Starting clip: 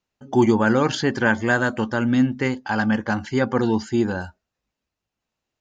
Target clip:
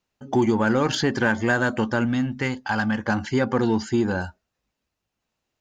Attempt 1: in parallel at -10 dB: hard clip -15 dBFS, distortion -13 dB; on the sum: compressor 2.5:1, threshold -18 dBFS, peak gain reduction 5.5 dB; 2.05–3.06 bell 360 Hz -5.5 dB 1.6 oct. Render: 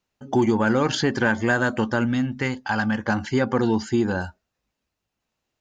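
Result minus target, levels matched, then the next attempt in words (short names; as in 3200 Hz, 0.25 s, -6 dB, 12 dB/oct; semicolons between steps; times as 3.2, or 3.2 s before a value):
hard clip: distortion -7 dB
in parallel at -10 dB: hard clip -22.5 dBFS, distortion -6 dB; on the sum: compressor 2.5:1, threshold -18 dBFS, peak gain reduction 5 dB; 2.05–3.06 bell 360 Hz -5.5 dB 1.6 oct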